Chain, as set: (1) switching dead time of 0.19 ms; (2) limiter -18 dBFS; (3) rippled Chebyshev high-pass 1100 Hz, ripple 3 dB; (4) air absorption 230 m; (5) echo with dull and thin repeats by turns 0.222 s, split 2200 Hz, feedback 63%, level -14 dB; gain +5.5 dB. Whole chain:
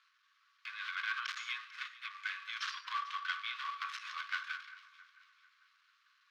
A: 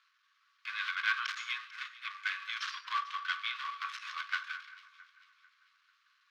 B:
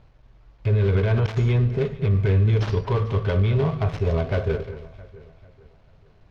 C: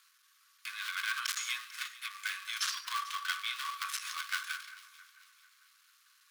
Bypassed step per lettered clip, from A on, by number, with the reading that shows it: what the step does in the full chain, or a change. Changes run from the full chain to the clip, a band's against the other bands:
2, mean gain reduction 2.0 dB; 3, crest factor change -10.0 dB; 4, 8 kHz band +15.0 dB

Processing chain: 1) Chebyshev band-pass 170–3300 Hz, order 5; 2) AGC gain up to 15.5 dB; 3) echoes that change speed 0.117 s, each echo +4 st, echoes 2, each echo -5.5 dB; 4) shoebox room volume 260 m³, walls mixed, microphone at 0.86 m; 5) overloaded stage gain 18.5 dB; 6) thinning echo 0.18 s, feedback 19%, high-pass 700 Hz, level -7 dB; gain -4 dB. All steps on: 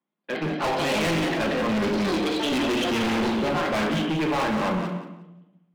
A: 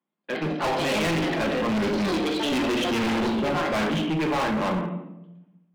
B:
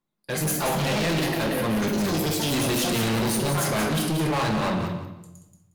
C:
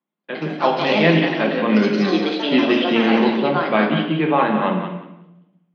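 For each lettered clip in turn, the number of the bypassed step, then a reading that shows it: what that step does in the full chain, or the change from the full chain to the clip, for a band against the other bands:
6, crest factor change -5.0 dB; 1, 8 kHz band +11.5 dB; 5, distortion -5 dB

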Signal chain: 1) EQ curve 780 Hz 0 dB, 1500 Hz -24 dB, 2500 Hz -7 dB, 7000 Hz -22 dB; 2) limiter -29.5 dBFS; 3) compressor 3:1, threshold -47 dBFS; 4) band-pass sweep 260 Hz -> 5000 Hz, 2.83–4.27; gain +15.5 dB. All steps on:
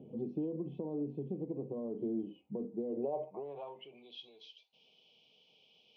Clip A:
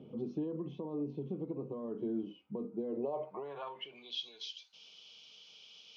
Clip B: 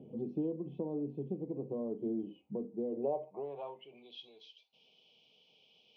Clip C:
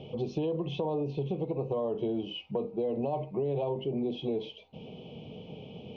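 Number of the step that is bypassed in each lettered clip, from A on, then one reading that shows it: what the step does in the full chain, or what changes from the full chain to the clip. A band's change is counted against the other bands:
1, 4 kHz band +10.5 dB; 2, mean gain reduction 1.5 dB; 4, 250 Hz band -5.5 dB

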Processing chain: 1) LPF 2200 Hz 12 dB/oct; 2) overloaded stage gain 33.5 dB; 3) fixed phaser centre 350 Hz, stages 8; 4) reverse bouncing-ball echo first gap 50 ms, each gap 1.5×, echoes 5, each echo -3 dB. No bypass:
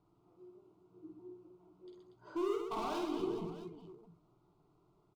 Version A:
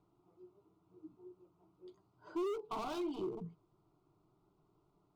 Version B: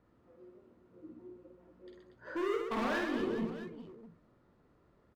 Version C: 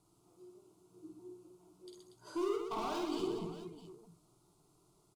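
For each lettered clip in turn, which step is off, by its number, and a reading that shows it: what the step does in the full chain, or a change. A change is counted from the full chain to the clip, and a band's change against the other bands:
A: 4, echo-to-direct 0.0 dB to none; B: 3, 2 kHz band +12.5 dB; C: 1, 8 kHz band +4.5 dB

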